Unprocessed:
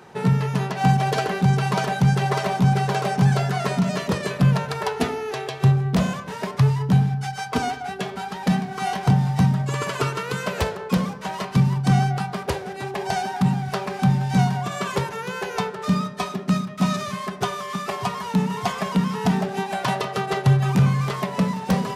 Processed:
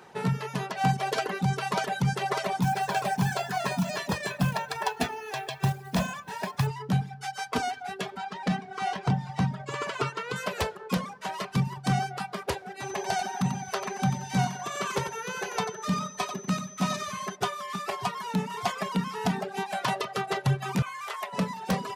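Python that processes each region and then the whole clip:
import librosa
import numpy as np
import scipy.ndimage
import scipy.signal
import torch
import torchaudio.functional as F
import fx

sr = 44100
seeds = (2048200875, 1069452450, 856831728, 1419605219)

y = fx.chain(x, sr, fx.dynamic_eq(hz=130.0, q=6.3, threshold_db=-30.0, ratio=4.0, max_db=-6),
    fx.comb(ms=1.2, depth=0.42),
    fx.quant_companded(bits=6), at=(2.62, 6.67))
y = fx.chain(y, sr, fx.lowpass(hz=8900.0, slope=12),
    fx.high_shelf(hz=5900.0, db=-7.5), at=(8.17, 10.36))
y = fx.dmg_tone(y, sr, hz=6100.0, level_db=-43.0, at=(12.8, 17.35), fade=0.02)
y = fx.echo_single(y, sr, ms=91, db=-6.5, at=(12.8, 17.35), fade=0.02)
y = fx.chain(y, sr, fx.highpass(hz=760.0, slope=12),
    fx.peak_eq(hz=4600.0, db=-5.0, octaves=0.65), at=(20.82, 21.33))
y = fx.dereverb_blind(y, sr, rt60_s=0.77)
y = fx.low_shelf(y, sr, hz=300.0, db=-7.0)
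y = y * 10.0 ** (-2.5 / 20.0)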